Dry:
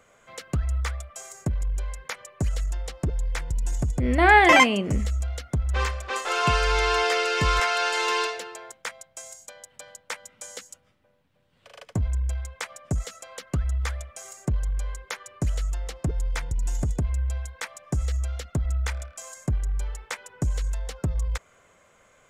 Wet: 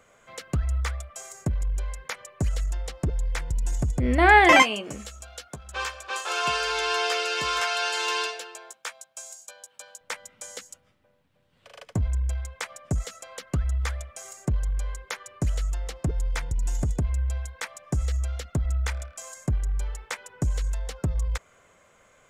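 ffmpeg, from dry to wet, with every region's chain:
ffmpeg -i in.wav -filter_complex "[0:a]asettb=1/sr,asplit=3[link_01][link_02][link_03];[link_01]atrim=end=4.624[link_04];[link_02]atrim=start=4.62:end=10.01,asetpts=PTS-STARTPTS,afade=type=in:duration=0.004:curve=qsin,afade=type=out:start_time=5.386:duration=0.004:curve=qsin,highpass=frequency=830:poles=1,bandreject=frequency=2000:width=6.2,asplit=2[link_05][link_06];[link_06]adelay=14,volume=-9dB[link_07];[link_05][link_07]amix=inputs=2:normalize=0,atrim=end_sample=237699[link_08];[link_03]atrim=start=10.006[link_09];[link_04][link_08]acrossfade=duration=0.004:curve1=hsin:curve2=qsin[link_10];[link_10][link_09]acrossfade=duration=0.004:curve1=qsin:curve2=hsin" out.wav

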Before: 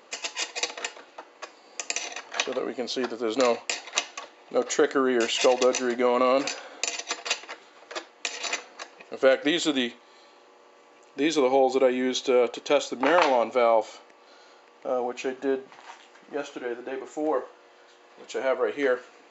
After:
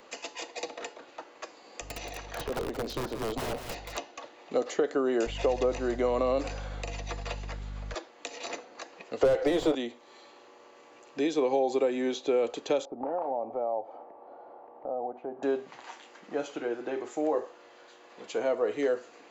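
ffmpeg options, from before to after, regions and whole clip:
ffmpeg -i in.wav -filter_complex "[0:a]asettb=1/sr,asplit=3[link_01][link_02][link_03];[link_01]atrim=end=1.814[link_04];[link_02]atrim=start=1.81:end=3.97,asetpts=PTS-STARTPTS,afade=type=in:duration=0.004:curve=qsin,afade=type=out:start_time=2.156:duration=0.004:curve=qsin,aeval=exprs='(mod(12.6*val(0)+1,2)-1)/12.6':channel_layout=same,aecho=1:1:177:0.299,atrim=end_sample=95256,aeval=exprs='val(0)+0.002*(sin(2*PI*50*n/s)+sin(2*PI*2*50*n/s)/2+sin(2*PI*3*50*n/s)/3+sin(2*PI*4*50*n/s)/4+sin(2*PI*5*50*n/s)/5)':channel_layout=same[link_05];[link_03]atrim=start=3.966[link_06];[link_04][link_05]acrossfade=duration=0.004:curve1=hsin:curve2=qsin[link_07];[link_07][link_06]acrossfade=duration=0.004:curve1=qsin:curve2=hsin,asettb=1/sr,asplit=3[link_08][link_09][link_10];[link_08]atrim=end=5.264[link_11];[link_09]atrim=start=5.26:end=7.94,asetpts=PTS-STARTPTS,afade=type=in:duration=0.004:curve=qsin,afade=type=out:start_time=2.676:duration=0.004:curve=qsin,acrossover=split=3100[link_12][link_13];[link_13]acompressor=threshold=-43dB:ratio=4:attack=1:release=60[link_14];[link_12][link_14]amix=inputs=2:normalize=0,aeval=exprs='val(0)+0.0126*(sin(2*PI*50*n/s)+sin(2*PI*2*50*n/s)/2+sin(2*PI*3*50*n/s)/3+sin(2*PI*4*50*n/s)/4+sin(2*PI*5*50*n/s)/5)':channel_layout=same[link_15];[link_10]atrim=start=7.936[link_16];[link_11][link_15]acrossfade=duration=0.004:curve1=hsin:curve2=qsin[link_17];[link_17][link_16]acrossfade=duration=0.004:curve1=qsin:curve2=hsin,asettb=1/sr,asplit=3[link_18][link_19][link_20];[link_18]atrim=end=9.214[link_21];[link_19]atrim=start=9.21:end=9.75,asetpts=PTS-STARTPTS,afade=type=in:duration=0.004:curve=qsin,afade=type=out:start_time=0.536:duration=0.004:curve=qsin,highpass=frequency=360:width=0.5412,highpass=frequency=360:width=1.3066,asplit=2[link_22][link_23];[link_23]highpass=frequency=720:poles=1,volume=22dB,asoftclip=type=tanh:threshold=-9dB[link_24];[link_22][link_24]amix=inputs=2:normalize=0,lowpass=frequency=3600:poles=1,volume=-6dB,tiltshelf=frequency=1100:gain=9[link_25];[link_20]atrim=start=9.746[link_26];[link_21][link_25]acrossfade=duration=0.004:curve1=hsin:curve2=qsin[link_27];[link_27][link_26]acrossfade=duration=0.004:curve1=qsin:curve2=hsin,asettb=1/sr,asplit=3[link_28][link_29][link_30];[link_28]atrim=end=12.854[link_31];[link_29]atrim=start=12.85:end=15.43,asetpts=PTS-STARTPTS,afade=type=in:duration=0.004:curve=qsin,afade=type=out:start_time=2.576:duration=0.004:curve=qsin,acompressor=threshold=-45dB:ratio=2:attack=3.2:release=140:knee=1:detection=peak,lowpass=frequency=770:width_type=q:width=2.9[link_32];[link_30]atrim=start=15.426[link_33];[link_31][link_32]acrossfade=duration=0.004:curve1=hsin:curve2=qsin[link_34];[link_34][link_33]acrossfade=duration=0.004:curve1=qsin:curve2=hsin,lowshelf=frequency=110:gain=11.5,acrossover=split=340|840|4400[link_35][link_36][link_37][link_38];[link_35]acompressor=threshold=-37dB:ratio=4[link_39];[link_36]acompressor=threshold=-25dB:ratio=4[link_40];[link_37]acompressor=threshold=-43dB:ratio=4[link_41];[link_38]acompressor=threshold=-48dB:ratio=4[link_42];[link_39][link_40][link_41][link_42]amix=inputs=4:normalize=0" out.wav

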